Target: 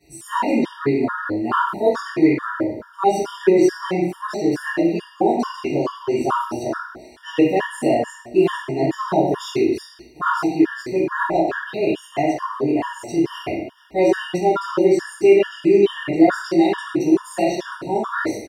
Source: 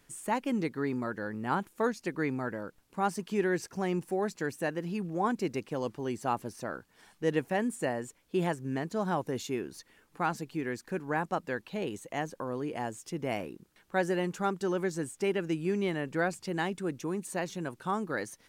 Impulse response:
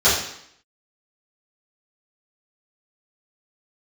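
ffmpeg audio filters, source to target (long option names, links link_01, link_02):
-filter_complex "[0:a]aecho=1:1:2.9:0.49[link_01];[1:a]atrim=start_sample=2205,asetrate=35721,aresample=44100[link_02];[link_01][link_02]afir=irnorm=-1:irlink=0,afftfilt=real='re*gt(sin(2*PI*2.3*pts/sr)*(1-2*mod(floor(b*sr/1024/940),2)),0)':imag='im*gt(sin(2*PI*2.3*pts/sr)*(1-2*mod(floor(b*sr/1024/940),2)),0)':win_size=1024:overlap=0.75,volume=-9dB"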